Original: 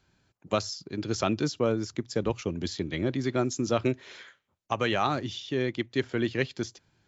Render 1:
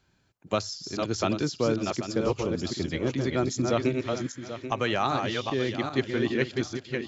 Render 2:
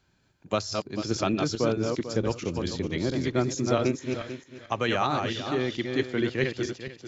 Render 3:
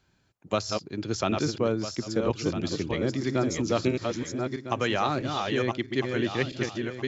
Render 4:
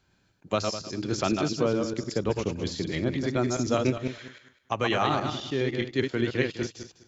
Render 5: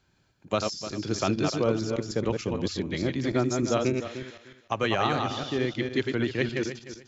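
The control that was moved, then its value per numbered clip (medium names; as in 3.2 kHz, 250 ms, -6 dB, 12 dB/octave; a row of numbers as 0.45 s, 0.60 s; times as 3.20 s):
backward echo that repeats, time: 393 ms, 222 ms, 652 ms, 102 ms, 151 ms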